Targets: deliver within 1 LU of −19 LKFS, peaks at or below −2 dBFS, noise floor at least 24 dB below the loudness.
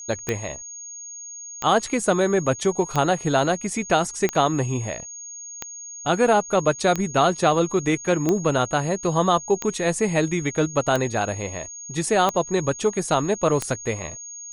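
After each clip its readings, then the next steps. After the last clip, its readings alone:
number of clicks 11; interfering tone 6,600 Hz; level of the tone −35 dBFS; integrated loudness −22.5 LKFS; sample peak −6.0 dBFS; target loudness −19.0 LKFS
→ click removal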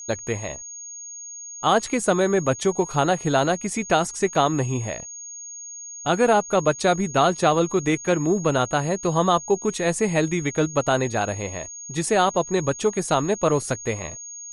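number of clicks 0; interfering tone 6,600 Hz; level of the tone −35 dBFS
→ notch filter 6,600 Hz, Q 30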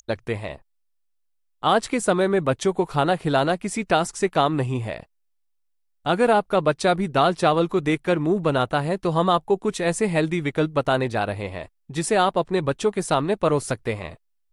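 interfering tone none found; integrated loudness −22.5 LKFS; sample peak −6.0 dBFS; target loudness −19.0 LKFS
→ level +3.5 dB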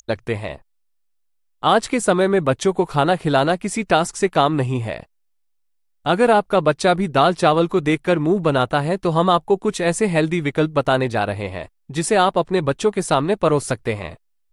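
integrated loudness −19.0 LKFS; sample peak −2.5 dBFS; background noise floor −66 dBFS

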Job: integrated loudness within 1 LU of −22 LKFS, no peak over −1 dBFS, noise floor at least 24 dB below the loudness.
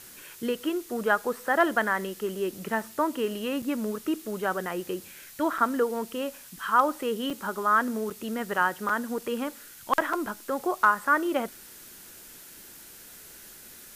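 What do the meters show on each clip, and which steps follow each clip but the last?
number of dropouts 6; longest dropout 4.8 ms; background noise floor −48 dBFS; target noise floor −52 dBFS; integrated loudness −28.0 LKFS; sample peak −9.5 dBFS; target loudness −22.0 LKFS
→ repair the gap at 0:03.62/0:05.58/0:07.30/0:08.10/0:08.89/0:10.13, 4.8 ms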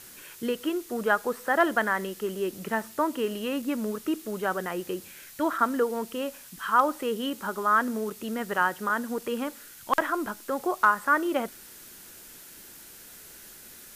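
number of dropouts 0; background noise floor −48 dBFS; target noise floor −52 dBFS
→ noise reduction from a noise print 6 dB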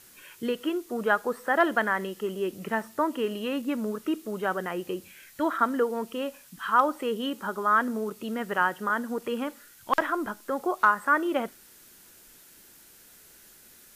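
background noise floor −54 dBFS; integrated loudness −28.0 LKFS; sample peak −9.5 dBFS; target loudness −22.0 LKFS
→ level +6 dB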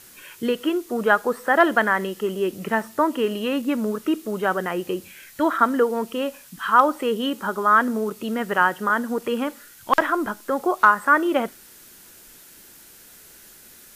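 integrated loudness −22.0 LKFS; sample peak −3.5 dBFS; background noise floor −48 dBFS

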